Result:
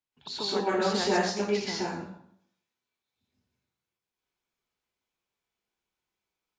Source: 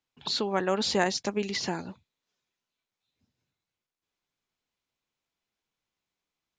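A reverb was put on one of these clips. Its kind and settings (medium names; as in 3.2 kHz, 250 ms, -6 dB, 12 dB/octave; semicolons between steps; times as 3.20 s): plate-style reverb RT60 0.68 s, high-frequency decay 0.7×, pre-delay 110 ms, DRR -8.5 dB; trim -8.5 dB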